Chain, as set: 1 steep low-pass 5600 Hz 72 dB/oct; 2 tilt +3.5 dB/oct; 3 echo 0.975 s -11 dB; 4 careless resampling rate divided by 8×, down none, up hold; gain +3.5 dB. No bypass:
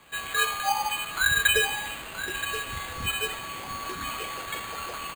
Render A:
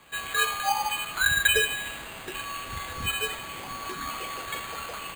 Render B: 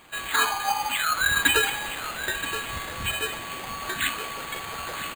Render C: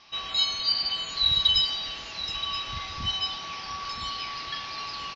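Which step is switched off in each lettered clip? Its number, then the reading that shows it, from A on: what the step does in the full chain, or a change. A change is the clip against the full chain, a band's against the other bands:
3, momentary loudness spread change +1 LU; 1, 250 Hz band +3.5 dB; 4, 4 kHz band +15.5 dB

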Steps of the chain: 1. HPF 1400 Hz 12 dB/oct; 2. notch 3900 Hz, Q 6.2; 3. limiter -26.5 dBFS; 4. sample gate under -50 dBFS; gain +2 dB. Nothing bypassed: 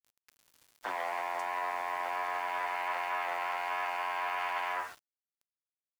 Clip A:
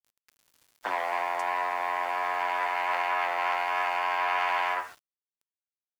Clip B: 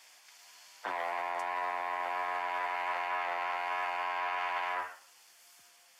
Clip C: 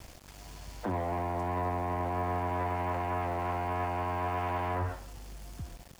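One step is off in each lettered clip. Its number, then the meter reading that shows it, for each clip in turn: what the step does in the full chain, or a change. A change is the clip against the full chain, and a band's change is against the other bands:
3, mean gain reduction 4.0 dB; 4, distortion -23 dB; 1, 250 Hz band +22.0 dB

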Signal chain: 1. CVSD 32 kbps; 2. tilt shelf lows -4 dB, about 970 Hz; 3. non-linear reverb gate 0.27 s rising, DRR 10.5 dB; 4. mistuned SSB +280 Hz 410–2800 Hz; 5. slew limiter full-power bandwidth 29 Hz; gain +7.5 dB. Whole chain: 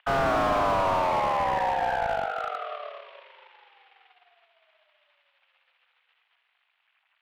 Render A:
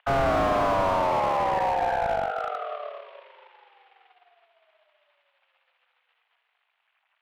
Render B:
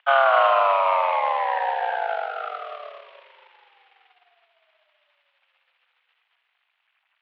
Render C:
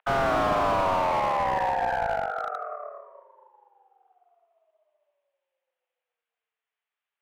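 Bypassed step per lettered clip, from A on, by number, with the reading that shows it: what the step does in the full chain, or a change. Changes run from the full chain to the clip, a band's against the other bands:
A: 2, 2 kHz band -3.0 dB; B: 5, 2 kHz band +2.0 dB; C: 1, momentary loudness spread change -2 LU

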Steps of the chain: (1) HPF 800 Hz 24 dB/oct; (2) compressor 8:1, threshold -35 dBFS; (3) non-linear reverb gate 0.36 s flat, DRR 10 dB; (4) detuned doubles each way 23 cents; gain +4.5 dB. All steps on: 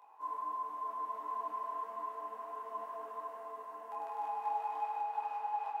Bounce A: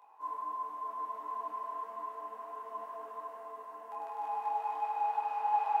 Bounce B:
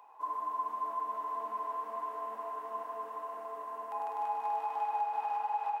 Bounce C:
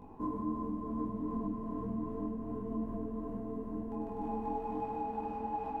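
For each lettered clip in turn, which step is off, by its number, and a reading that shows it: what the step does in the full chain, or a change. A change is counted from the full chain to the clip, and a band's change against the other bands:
2, crest factor change +3.5 dB; 4, crest factor change -1.5 dB; 1, momentary loudness spread change -4 LU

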